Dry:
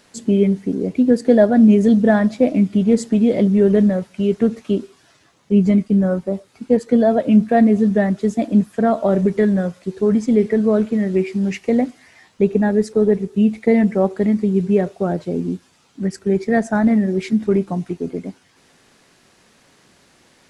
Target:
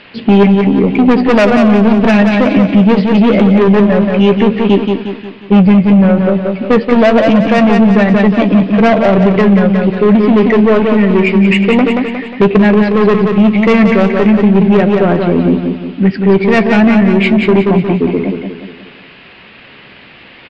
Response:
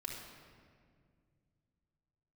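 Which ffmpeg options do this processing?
-filter_complex "[0:a]aresample=11025,asoftclip=type=hard:threshold=-13.5dB,aresample=44100,lowpass=f=2.7k:t=q:w=3.2,asoftclip=type=tanh:threshold=-14dB,asplit=2[a][b];[b]adelay=15,volume=-13dB[c];[a][c]amix=inputs=2:normalize=0,asplit=2[d][e];[e]aecho=0:1:179|358|537|716|895|1074:0.501|0.231|0.106|0.0488|0.0224|0.0103[f];[d][f]amix=inputs=2:normalize=0,alimiter=level_in=14dB:limit=-1dB:release=50:level=0:latency=1,volume=-1dB"

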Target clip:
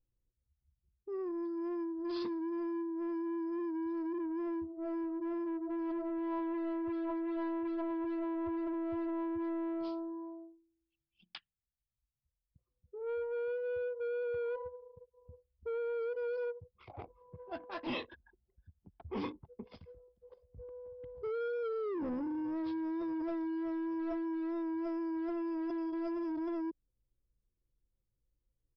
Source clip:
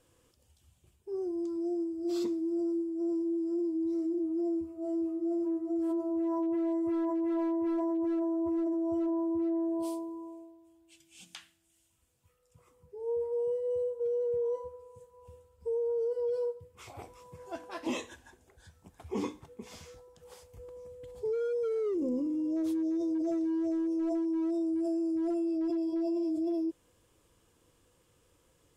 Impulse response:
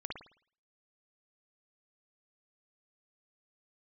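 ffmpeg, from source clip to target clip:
-filter_complex "[0:a]anlmdn=0.0251,acrossover=split=140|890|3700[a][b][c][d];[b]asoftclip=type=tanh:threshold=-35.5dB[e];[a][e][c][d]amix=inputs=4:normalize=0,aresample=11025,aresample=44100"

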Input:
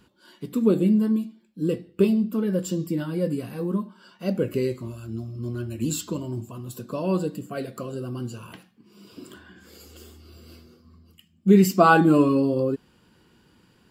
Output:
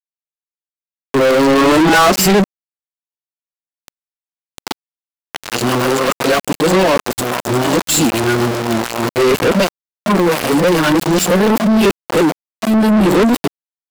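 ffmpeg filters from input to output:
-filter_complex "[0:a]areverse,aeval=exprs='val(0)*gte(abs(val(0)),0.0211)':c=same,asplit=2[a][b];[b]highpass=f=720:p=1,volume=37dB,asoftclip=type=tanh:threshold=-3dB[c];[a][c]amix=inputs=2:normalize=0,lowpass=f=7.7k:p=1,volume=-6dB,volume=-1dB"

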